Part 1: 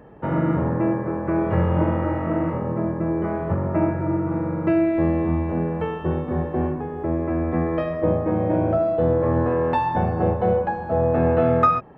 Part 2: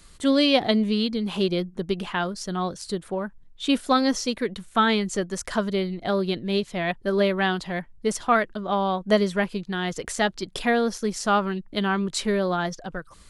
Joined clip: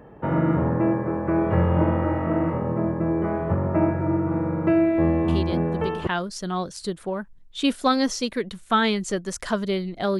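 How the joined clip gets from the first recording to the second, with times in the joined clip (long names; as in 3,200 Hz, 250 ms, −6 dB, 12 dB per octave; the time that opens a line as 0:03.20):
part 1
0:05.28: mix in part 2 from 0:01.33 0.79 s −6 dB
0:06.07: continue with part 2 from 0:02.12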